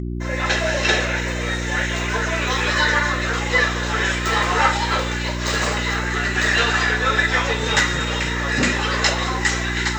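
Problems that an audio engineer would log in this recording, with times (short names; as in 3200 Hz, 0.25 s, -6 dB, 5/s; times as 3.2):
hum 60 Hz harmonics 6 -26 dBFS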